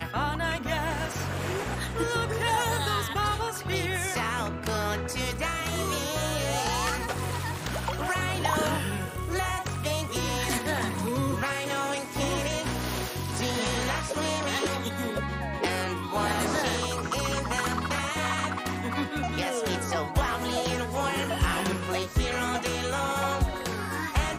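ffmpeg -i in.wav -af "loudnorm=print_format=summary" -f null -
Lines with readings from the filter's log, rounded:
Input Integrated:    -28.8 LUFS
Input True Peak:     -13.3 dBTP
Input LRA:             1.0 LU
Input Threshold:     -38.8 LUFS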